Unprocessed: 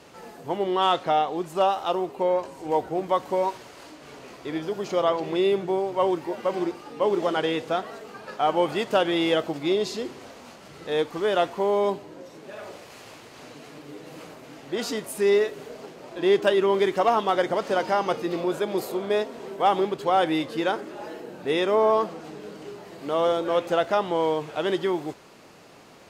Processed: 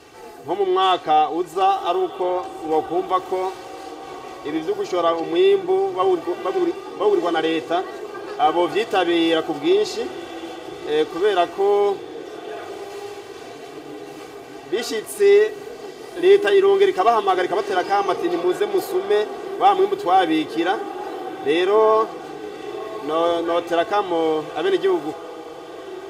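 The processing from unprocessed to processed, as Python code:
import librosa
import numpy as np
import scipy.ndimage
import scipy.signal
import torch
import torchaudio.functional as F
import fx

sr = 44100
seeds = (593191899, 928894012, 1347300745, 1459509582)

p1 = x + 0.75 * np.pad(x, (int(2.6 * sr / 1000.0), 0))[:len(x)]
p2 = p1 + fx.echo_diffused(p1, sr, ms=1195, feedback_pct=57, wet_db=-16.0, dry=0)
y = p2 * 10.0 ** (2.0 / 20.0)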